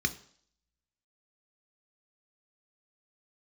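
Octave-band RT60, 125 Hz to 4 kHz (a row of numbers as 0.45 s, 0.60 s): 0.50 s, 0.55 s, 0.55 s, 0.55 s, 0.55 s, 0.65 s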